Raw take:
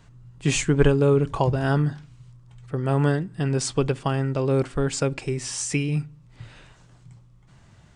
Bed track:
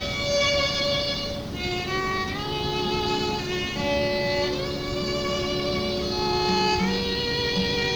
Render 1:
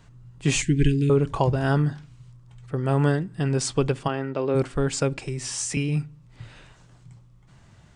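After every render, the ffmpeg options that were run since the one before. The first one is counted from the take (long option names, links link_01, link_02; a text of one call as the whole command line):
ffmpeg -i in.wav -filter_complex "[0:a]asettb=1/sr,asplit=3[link_01][link_02][link_03];[link_01]atrim=end=0.624[link_04];[link_02]atrim=start=0.62:end=1.1,asetpts=PTS-STARTPTS,afade=type=in:duration=0.004:curve=qsin,afade=type=out:start_time=0.476:duration=0.004:curve=qsin,asuperstop=centerf=820:order=12:qfactor=0.57[link_05];[link_03]atrim=start=1.096[link_06];[link_04][link_05]acrossfade=duration=0.004:curve1=hsin:curve2=qsin[link_07];[link_07][link_06]acrossfade=duration=0.004:curve1=qsin:curve2=hsin,asplit=3[link_08][link_09][link_10];[link_08]afade=type=out:start_time=4.07:duration=0.02[link_11];[link_09]highpass=230,lowpass=3600,afade=type=in:start_time=4.07:duration=0.02,afade=type=out:start_time=4.54:duration=0.02[link_12];[link_10]afade=type=in:start_time=4.54:duration=0.02[link_13];[link_11][link_12][link_13]amix=inputs=3:normalize=0,asettb=1/sr,asplit=3[link_14][link_15][link_16];[link_14]atrim=end=5.174[link_17];[link_15]atrim=start=5.17:end=5.77,asetpts=PTS-STARTPTS,afade=type=in:duration=0.004:curve=qsin,afade=type=out:start_time=0.596:duration=0.004:curve=qsin,acrossover=split=150|3000[link_18][link_19][link_20];[link_19]acompressor=threshold=-32dB:ratio=3:attack=3.2:release=140:knee=2.83:detection=peak[link_21];[link_18][link_21][link_20]amix=inputs=3:normalize=0[link_22];[link_16]atrim=start=5.766[link_23];[link_17][link_22]acrossfade=duration=0.004:curve1=hsin:curve2=qsin[link_24];[link_24][link_23]acrossfade=duration=0.004:curve1=qsin:curve2=hsin" out.wav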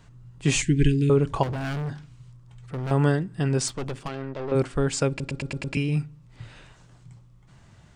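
ffmpeg -i in.wav -filter_complex "[0:a]asettb=1/sr,asplit=3[link_01][link_02][link_03];[link_01]atrim=end=1.434[link_04];[link_02]atrim=start=1.43:end=2.91,asetpts=PTS-STARTPTS,afade=type=in:duration=0.004:curve=qsin,afade=type=out:start_time=1.476:duration=0.004:curve=qsin,asoftclip=type=hard:threshold=-27.5dB[link_05];[link_03]atrim=start=2.906[link_06];[link_04][link_05]acrossfade=duration=0.004:curve1=hsin:curve2=qsin[link_07];[link_07][link_06]acrossfade=duration=0.004:curve1=qsin:curve2=hsin,asettb=1/sr,asplit=3[link_08][link_09][link_10];[link_08]atrim=end=3.684[link_11];[link_09]atrim=start=3.68:end=4.52,asetpts=PTS-STARTPTS,afade=type=in:duration=0.004:curve=qsin,afade=type=out:start_time=0.836:duration=0.004:curve=qsin,aeval=exprs='(tanh(25.1*val(0)+0.6)-tanh(0.6))/25.1':channel_layout=same[link_12];[link_10]atrim=start=4.516[link_13];[link_11][link_12]acrossfade=duration=0.004:curve1=hsin:curve2=qsin[link_14];[link_14][link_13]acrossfade=duration=0.004:curve1=qsin:curve2=hsin,asplit=7[link_15][link_16][link_17][link_18][link_19][link_20][link_21];[link_15]atrim=end=5.202[link_22];[link_16]atrim=start=5.088:end=5.202[link_23];[link_17]atrim=start=5.088:end=5.202[link_24];[link_18]atrim=start=5.088:end=5.202[link_25];[link_19]atrim=start=5.088:end=5.202[link_26];[link_20]atrim=start=5.088:end=5.202[link_27];[link_21]atrim=start=5.748[link_28];[link_22][link_23]acrossfade=duration=0.004:curve1=hsin:curve2=hsin[link_29];[link_29][link_24]acrossfade=duration=0.004:curve1=hsin:curve2=hsin[link_30];[link_30][link_25]acrossfade=duration=0.004:curve1=hsin:curve2=hsin[link_31];[link_31][link_26]acrossfade=duration=0.004:curve1=hsin:curve2=hsin[link_32];[link_32][link_27]acrossfade=duration=0.004:curve1=hsin:curve2=hsin[link_33];[link_33][link_28]acrossfade=duration=0.004:curve1=hsin:curve2=hsin" out.wav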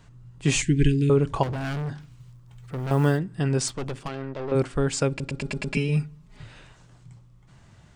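ffmpeg -i in.wav -filter_complex "[0:a]asplit=3[link_01][link_02][link_03];[link_01]afade=type=out:start_time=1.99:duration=0.02[link_04];[link_02]acrusher=bits=8:mode=log:mix=0:aa=0.000001,afade=type=in:start_time=1.99:duration=0.02,afade=type=out:start_time=3.17:duration=0.02[link_05];[link_03]afade=type=in:start_time=3.17:duration=0.02[link_06];[link_04][link_05][link_06]amix=inputs=3:normalize=0,asettb=1/sr,asplit=3[link_07][link_08][link_09];[link_07]atrim=end=5.414[link_10];[link_08]atrim=start=5.41:end=6.43,asetpts=PTS-STARTPTS,afade=type=in:duration=0.004:curve=qsin,afade=type=out:start_time=1.016:duration=0.004:curve=qsin,aecho=1:1:4.8:0.88,atrim=end_sample=44982[link_11];[link_09]atrim=start=6.426[link_12];[link_10][link_11]acrossfade=duration=0.004:curve1=hsin:curve2=qsin[link_13];[link_13][link_12]acrossfade=duration=0.004:curve1=qsin:curve2=hsin" out.wav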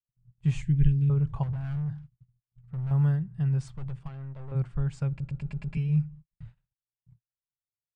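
ffmpeg -i in.wav -af "agate=range=-56dB:threshold=-43dB:ratio=16:detection=peak,firequalizer=gain_entry='entry(150,0);entry(270,-22);entry(840,-14);entry(5500,-25)':delay=0.05:min_phase=1" out.wav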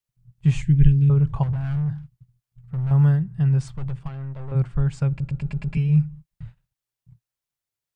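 ffmpeg -i in.wav -af "volume=7dB" out.wav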